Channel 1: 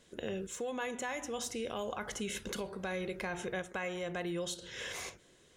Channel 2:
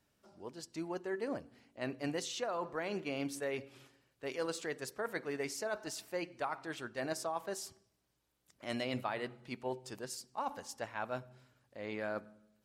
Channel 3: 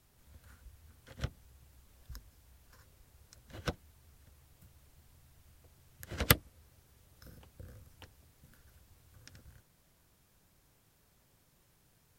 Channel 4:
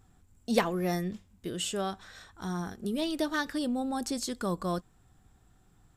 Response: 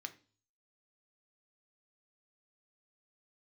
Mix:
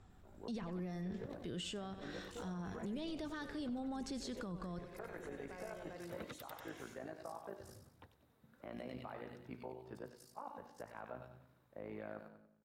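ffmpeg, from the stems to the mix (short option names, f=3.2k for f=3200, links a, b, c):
-filter_complex "[0:a]adelay=1750,volume=-11.5dB,asplit=2[a][b];[b]volume=-9dB[c];[1:a]tremolo=f=55:d=0.857,equalizer=f=7.2k:t=o:w=0.77:g=-5.5,bandreject=f=120.2:t=h:w=4,bandreject=f=240.4:t=h:w=4,bandreject=f=360.6:t=h:w=4,bandreject=f=480.8:t=h:w=4,bandreject=f=601:t=h:w=4,bandreject=f=721.2:t=h:w=4,bandreject=f=841.4:t=h:w=4,bandreject=f=961.6:t=h:w=4,bandreject=f=1.0818k:t=h:w=4,bandreject=f=1.202k:t=h:w=4,bandreject=f=1.3222k:t=h:w=4,bandreject=f=1.4424k:t=h:w=4,bandreject=f=1.5626k:t=h:w=4,bandreject=f=1.6828k:t=h:w=4,bandreject=f=1.803k:t=h:w=4,bandreject=f=1.9232k:t=h:w=4,bandreject=f=2.0434k:t=h:w=4,bandreject=f=2.1636k:t=h:w=4,bandreject=f=2.2838k:t=h:w=4,bandreject=f=2.404k:t=h:w=4,bandreject=f=2.5242k:t=h:w=4,bandreject=f=2.6444k:t=h:w=4,bandreject=f=2.7646k:t=h:w=4,bandreject=f=2.8848k:t=h:w=4,bandreject=f=3.005k:t=h:w=4,bandreject=f=3.1252k:t=h:w=4,bandreject=f=3.2454k:t=h:w=4,bandreject=f=3.3656k:t=h:w=4,bandreject=f=3.4858k:t=h:w=4,bandreject=f=3.606k:t=h:w=4,bandreject=f=3.7262k:t=h:w=4,bandreject=f=3.8464k:t=h:w=4,bandreject=f=3.9666k:t=h:w=4,bandreject=f=4.0868k:t=h:w=4,bandreject=f=4.207k:t=h:w=4,bandreject=f=4.3272k:t=h:w=4,bandreject=f=4.4474k:t=h:w=4,bandreject=f=4.5676k:t=h:w=4,bandreject=f=4.6878k:t=h:w=4,volume=1.5dB,asplit=2[d][e];[e]volume=-17dB[f];[2:a]highpass=140,equalizer=f=3.8k:w=7.9:g=11.5,aphaser=in_gain=1:out_gain=1:delay=4.6:decay=0.36:speed=0.89:type=sinusoidal,volume=-2dB,asplit=2[g][h];[h]volume=-21.5dB[i];[3:a]lowpass=4.4k,volume=-0.5dB,asplit=2[j][k];[k]volume=-16dB[l];[a][d][g]amix=inputs=3:normalize=0,lowpass=1.4k,acompressor=threshold=-43dB:ratio=6,volume=0dB[m];[c][f][i][l]amix=inputs=4:normalize=0,aecho=0:1:94|188|282|376|470:1|0.38|0.144|0.0549|0.0209[n];[j][m][n]amix=inputs=3:normalize=0,highshelf=f=11k:g=11,acrossover=split=160[o][p];[p]acompressor=threshold=-40dB:ratio=6[q];[o][q]amix=inputs=2:normalize=0,alimiter=level_in=11.5dB:limit=-24dB:level=0:latency=1:release=21,volume=-11.5dB"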